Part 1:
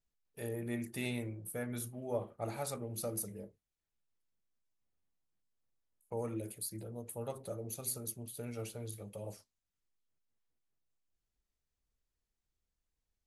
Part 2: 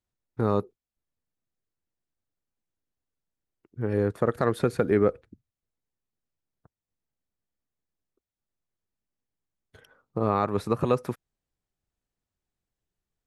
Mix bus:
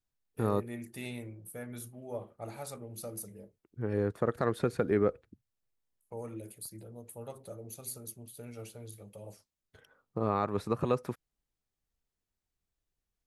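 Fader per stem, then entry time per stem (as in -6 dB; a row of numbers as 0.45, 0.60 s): -3.0, -5.5 dB; 0.00, 0.00 s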